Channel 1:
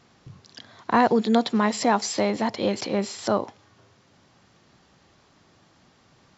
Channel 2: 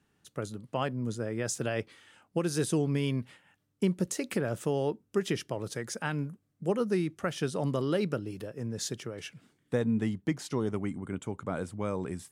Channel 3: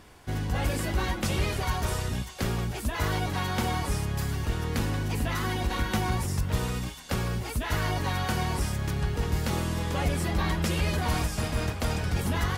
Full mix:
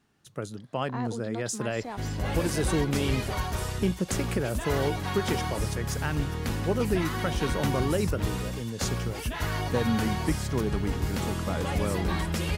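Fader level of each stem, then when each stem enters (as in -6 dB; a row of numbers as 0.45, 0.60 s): -17.5, +1.0, -2.0 dB; 0.00, 0.00, 1.70 s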